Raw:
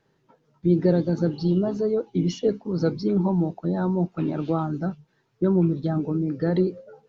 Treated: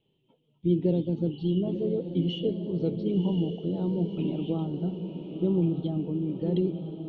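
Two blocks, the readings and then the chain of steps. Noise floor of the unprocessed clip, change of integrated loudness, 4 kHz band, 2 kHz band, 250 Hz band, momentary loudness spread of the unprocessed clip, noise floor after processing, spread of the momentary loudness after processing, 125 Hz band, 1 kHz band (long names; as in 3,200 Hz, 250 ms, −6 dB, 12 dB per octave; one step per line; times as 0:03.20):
−68 dBFS, −4.5 dB, +1.5 dB, below −10 dB, −4.0 dB, 6 LU, −72 dBFS, 5 LU, −3.5 dB, −12.5 dB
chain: drawn EQ curve 360 Hz 0 dB, 1,000 Hz −10 dB, 1,600 Hz −25 dB, 3,100 Hz +13 dB, 5,000 Hz −23 dB
on a send: feedback delay with all-pass diffusion 1,039 ms, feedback 51%, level −8 dB
on the sum: level −4.5 dB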